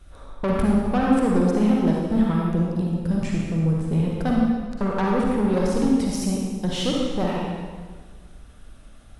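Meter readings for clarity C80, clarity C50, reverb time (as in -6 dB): 0.5 dB, -2.0 dB, 1.6 s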